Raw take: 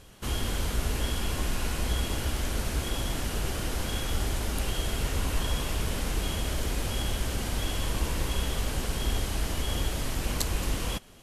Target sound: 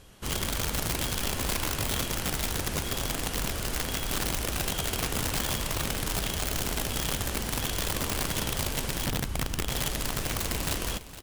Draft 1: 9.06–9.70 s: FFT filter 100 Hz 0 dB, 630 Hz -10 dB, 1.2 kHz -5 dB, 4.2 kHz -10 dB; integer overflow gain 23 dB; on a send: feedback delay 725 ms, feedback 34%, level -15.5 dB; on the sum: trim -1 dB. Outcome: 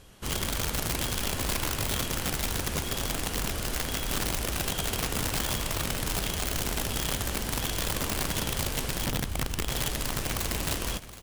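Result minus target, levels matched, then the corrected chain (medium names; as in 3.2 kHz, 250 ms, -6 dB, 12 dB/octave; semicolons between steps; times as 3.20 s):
echo 263 ms late
9.06–9.70 s: FFT filter 100 Hz 0 dB, 630 Hz -10 dB, 1.2 kHz -5 dB, 4.2 kHz -10 dB; integer overflow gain 23 dB; on a send: feedback delay 462 ms, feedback 34%, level -15.5 dB; on the sum: trim -1 dB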